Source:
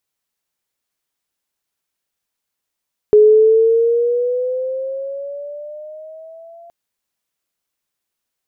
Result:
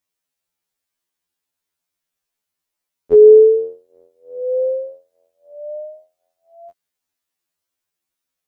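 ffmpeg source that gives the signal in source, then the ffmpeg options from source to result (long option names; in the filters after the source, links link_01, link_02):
-f lavfi -i "aevalsrc='pow(10,(-4.5-33*t/3.57)/20)*sin(2*PI*420*3.57/(8.5*log(2)/12)*(exp(8.5*log(2)/12*t/3.57)-1))':duration=3.57:sample_rate=44100"
-af "afftfilt=real='re*2*eq(mod(b,4),0)':imag='im*2*eq(mod(b,4),0)':win_size=2048:overlap=0.75"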